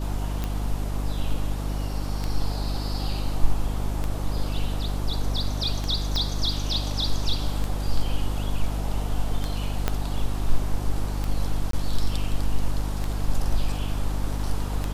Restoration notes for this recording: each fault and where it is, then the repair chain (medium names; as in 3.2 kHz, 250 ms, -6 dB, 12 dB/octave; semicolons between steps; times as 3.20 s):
hum 50 Hz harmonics 6 -28 dBFS
tick 33 1/3 rpm -14 dBFS
6.16 s: pop -14 dBFS
9.88 s: pop -9 dBFS
11.71–11.73 s: dropout 23 ms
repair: de-click; de-hum 50 Hz, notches 6; interpolate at 11.71 s, 23 ms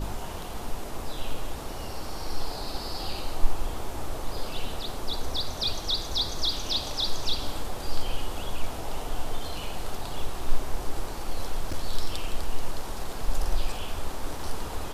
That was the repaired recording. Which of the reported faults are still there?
6.16 s: pop
9.88 s: pop